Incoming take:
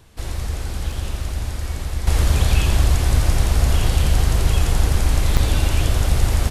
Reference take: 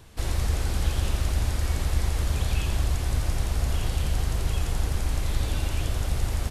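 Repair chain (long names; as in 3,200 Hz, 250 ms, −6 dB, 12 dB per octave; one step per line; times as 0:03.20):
repair the gap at 0:00.92/0:05.37, 3.7 ms
level 0 dB, from 0:02.07 −9 dB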